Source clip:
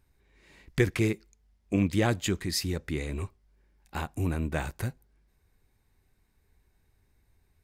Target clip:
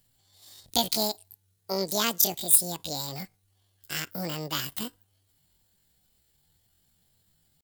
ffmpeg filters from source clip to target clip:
ffmpeg -i in.wav -af "asetrate=85689,aresample=44100,atempo=0.514651,crystalizer=i=6.5:c=0,aeval=exprs='1.5*(cos(1*acos(clip(val(0)/1.5,-1,1)))-cos(1*PI/2))+0.15*(cos(2*acos(clip(val(0)/1.5,-1,1)))-cos(2*PI/2))+0.00944*(cos(8*acos(clip(val(0)/1.5,-1,1)))-cos(8*PI/2))':channel_layout=same,volume=-6dB" out.wav

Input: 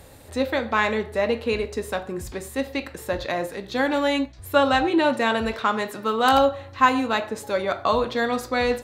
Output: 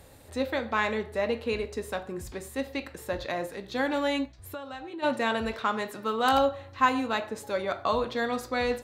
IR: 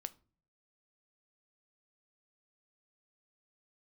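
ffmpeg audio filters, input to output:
-filter_complex "[0:a]asplit=3[link_01][link_02][link_03];[link_01]afade=type=out:start_time=4.35:duration=0.02[link_04];[link_02]acompressor=threshold=-33dB:ratio=5,afade=type=in:start_time=4.35:duration=0.02,afade=type=out:start_time=5.02:duration=0.02[link_05];[link_03]afade=type=in:start_time=5.02:duration=0.02[link_06];[link_04][link_05][link_06]amix=inputs=3:normalize=0,volume=-5.5dB"

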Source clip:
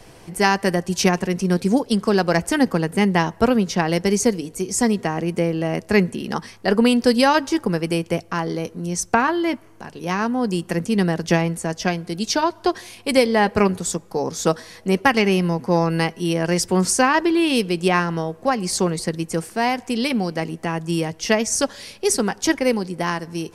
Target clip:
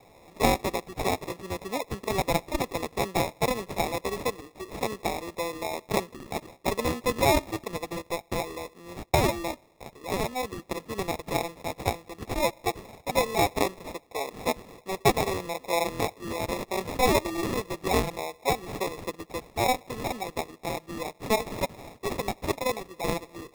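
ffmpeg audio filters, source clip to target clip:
ffmpeg -i in.wav -af "highpass=650,lowpass=4100,acrusher=samples=29:mix=1:aa=0.000001,volume=-3dB" out.wav

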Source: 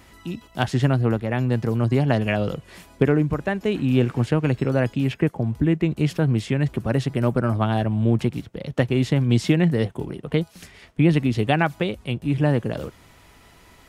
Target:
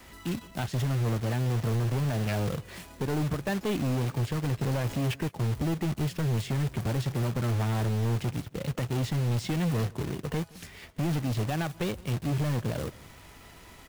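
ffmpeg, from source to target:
ffmpeg -i in.wav -filter_complex "[0:a]asettb=1/sr,asplit=3[link_01][link_02][link_03];[link_01]atrim=end=4.614[link_04];[link_02]atrim=start=4.61:end=5.14,asetpts=PTS-STARTPTS,afade=type=in:duration=0.004:curve=qsin,afade=type=out:start_time=0.526:duration=0.004:curve=qsin,aeval=exprs='val(0)+0.5*0.0282*sgn(val(0))':channel_layout=same[link_05];[link_03]atrim=start=5.136[link_06];[link_04][link_05]acrossfade=duration=0.004:curve1=hsin:curve2=qsin[link_07];[link_07][link_06]acrossfade=duration=0.004:curve1=qsin:curve2=hsin,adynamicequalizer=threshold=0.0178:dfrequency=110:dqfactor=1.3:tfrequency=110:tqfactor=1.3:attack=5:release=100:ratio=0.375:range=2.5:mode=boostabove:tftype=bell,alimiter=limit=-14.5dB:level=0:latency=1:release=472,asoftclip=type=tanh:threshold=-25.5dB,acrusher=bits=2:mode=log:mix=0:aa=0.000001,asplit=2[link_08][link_09];[link_09]adelay=169.1,volume=-23dB,highshelf=frequency=4000:gain=-3.8[link_10];[link_08][link_10]amix=inputs=2:normalize=0" out.wav

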